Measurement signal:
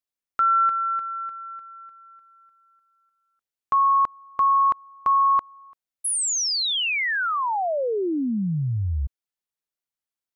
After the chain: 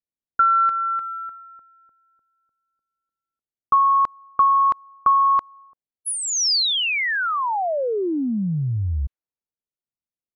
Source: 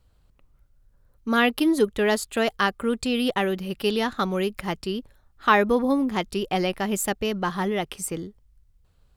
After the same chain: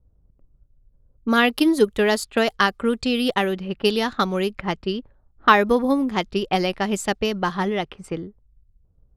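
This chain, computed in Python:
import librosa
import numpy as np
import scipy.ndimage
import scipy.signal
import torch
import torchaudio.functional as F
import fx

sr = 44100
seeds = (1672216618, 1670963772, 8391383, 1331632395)

y = fx.transient(x, sr, attack_db=4, sustain_db=-1)
y = fx.dynamic_eq(y, sr, hz=4800.0, q=2.0, threshold_db=-41.0, ratio=4.0, max_db=4)
y = fx.env_lowpass(y, sr, base_hz=450.0, full_db=-19.0)
y = F.gain(torch.from_numpy(y), 1.5).numpy()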